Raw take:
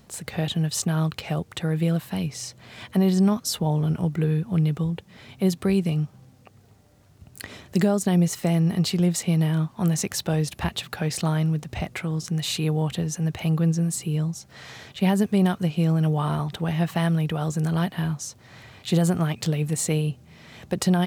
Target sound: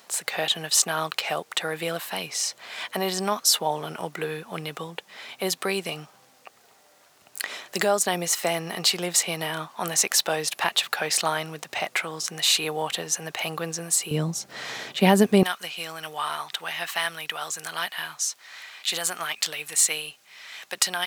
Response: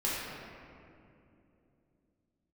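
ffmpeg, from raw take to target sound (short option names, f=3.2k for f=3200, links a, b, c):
-af "asetnsamples=n=441:p=0,asendcmd='14.11 highpass f 280;15.43 highpass f 1400',highpass=710,volume=8dB"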